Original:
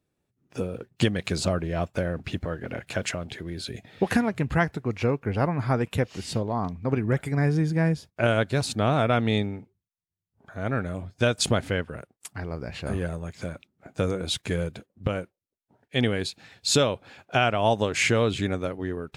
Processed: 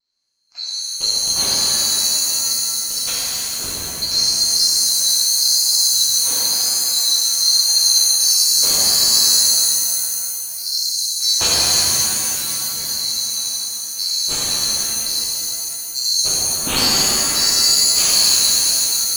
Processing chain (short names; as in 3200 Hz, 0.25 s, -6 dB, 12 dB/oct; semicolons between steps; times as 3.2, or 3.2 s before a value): band-swap scrambler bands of 4000 Hz; LPF 5800 Hz 12 dB/oct; vibrato 0.96 Hz 35 cents; shimmer reverb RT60 2.7 s, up +7 st, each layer -2 dB, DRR -8.5 dB; gain -1 dB